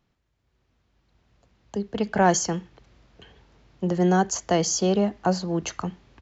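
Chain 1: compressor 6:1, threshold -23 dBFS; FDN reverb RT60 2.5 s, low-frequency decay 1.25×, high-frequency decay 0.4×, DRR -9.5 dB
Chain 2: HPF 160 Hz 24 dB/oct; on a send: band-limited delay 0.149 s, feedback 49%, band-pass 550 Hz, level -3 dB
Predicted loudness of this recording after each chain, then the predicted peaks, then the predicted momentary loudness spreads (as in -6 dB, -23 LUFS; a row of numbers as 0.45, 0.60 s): -20.0, -23.5 LUFS; -6.0, -8.5 dBFS; 15, 14 LU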